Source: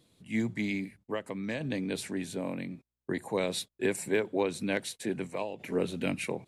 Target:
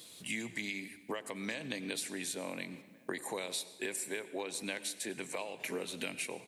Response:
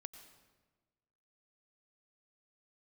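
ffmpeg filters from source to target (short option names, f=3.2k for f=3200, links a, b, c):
-filter_complex "[0:a]highpass=f=450:p=1,highshelf=f=2.7k:g=11.5,acompressor=threshold=-45dB:ratio=10,asplit=2[a][b];[b]adelay=1458,volume=-22dB,highshelf=f=4k:g=-32.8[c];[a][c]amix=inputs=2:normalize=0,asplit=2[d][e];[1:a]atrim=start_sample=2205[f];[e][f]afir=irnorm=-1:irlink=0,volume=7dB[g];[d][g]amix=inputs=2:normalize=0,volume=2.5dB"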